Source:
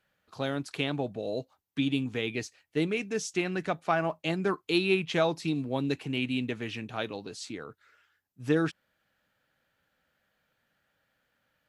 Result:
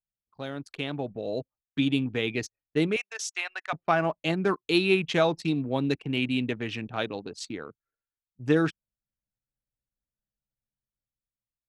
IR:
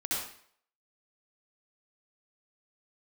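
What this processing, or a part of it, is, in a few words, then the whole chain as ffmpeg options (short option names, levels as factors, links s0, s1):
voice memo with heavy noise removal: -filter_complex "[0:a]asettb=1/sr,asplit=3[s0][s1][s2];[s0]atrim=end=2.964[s3];[s1]atrim=start=2.96:end=3.73,asetpts=PTS-STARTPTS,afade=t=in:d=0.004:c=qsin,afade=t=out:st=0.766:d=0.004:c=qsin,highpass=f=760:w=0.5412,highpass=f=760:w=1.3066[s4];[s2]atrim=start=3.726[s5];[s3][s4]acrossfade=d=0.004:c1=hsin:c2=qsin[s6];[s6][s5]acrossfade=d=0.004:c1=qsin:c2=hsin,anlmdn=0.251,dynaudnorm=f=440:g=5:m=2.66,volume=0.562"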